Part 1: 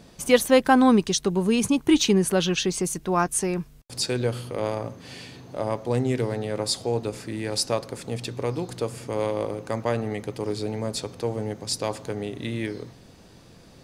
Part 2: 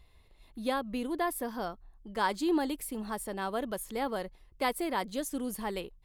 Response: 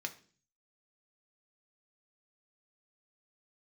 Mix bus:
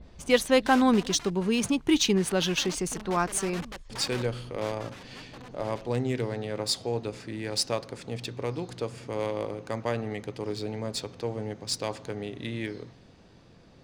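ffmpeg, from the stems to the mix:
-filter_complex "[0:a]adynamicequalizer=threshold=0.0112:dfrequency=1600:dqfactor=0.7:tfrequency=1600:tqfactor=0.7:attack=5:release=100:ratio=0.375:range=2:mode=boostabove:tftype=highshelf,volume=0.596[s0];[1:a]lowpass=f=5700:w=0.5412,lowpass=f=5700:w=1.3066,lowshelf=f=120:t=q:w=3:g=9,aeval=exprs='(mod(35.5*val(0)+1,2)-1)/35.5':c=same,volume=2,afade=t=out:st=0.87:d=0.44:silence=0.398107,afade=t=in:st=2.11:d=0.8:silence=0.421697,afade=t=out:st=4.17:d=0.71:silence=0.421697[s1];[s0][s1]amix=inputs=2:normalize=0,adynamicsmooth=sensitivity=6:basefreq=5200"

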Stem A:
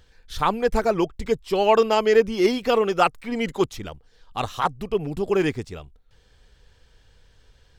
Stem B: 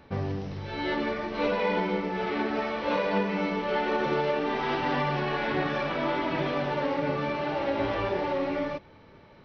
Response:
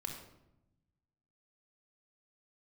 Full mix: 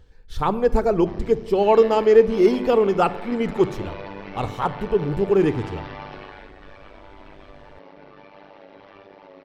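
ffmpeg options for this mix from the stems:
-filter_complex "[0:a]tiltshelf=f=970:g=6,volume=0.668,asplit=2[s0][s1];[s1]volume=0.422[s2];[1:a]highpass=f=190:p=1,alimiter=limit=0.0708:level=0:latency=1:release=27,tremolo=f=100:d=0.947,adelay=950,volume=0.841,afade=t=out:st=6.09:d=0.41:silence=0.316228[s3];[2:a]atrim=start_sample=2205[s4];[s2][s4]afir=irnorm=-1:irlink=0[s5];[s0][s3][s5]amix=inputs=3:normalize=0"

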